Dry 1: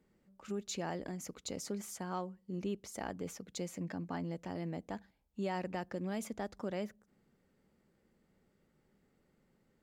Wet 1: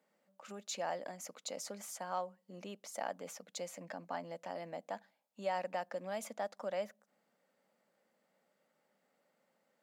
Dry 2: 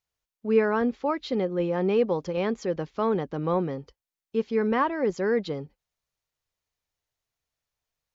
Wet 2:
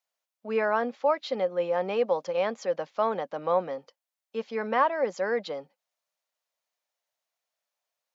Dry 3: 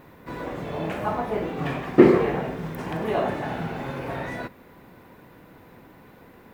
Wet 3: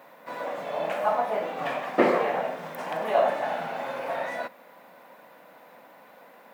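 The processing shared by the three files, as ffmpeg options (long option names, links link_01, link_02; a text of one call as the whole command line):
ffmpeg -i in.wav -af "highpass=frequency=200:width=0.5412,highpass=frequency=200:width=1.3066,lowshelf=frequency=470:width_type=q:width=3:gain=-6.5" out.wav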